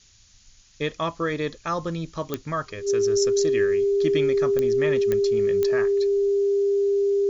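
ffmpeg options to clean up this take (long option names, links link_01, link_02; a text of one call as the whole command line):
ffmpeg -i in.wav -af "adeclick=threshold=4,bandreject=frequency=400:width=30,afftdn=noise_reduction=17:noise_floor=-53" out.wav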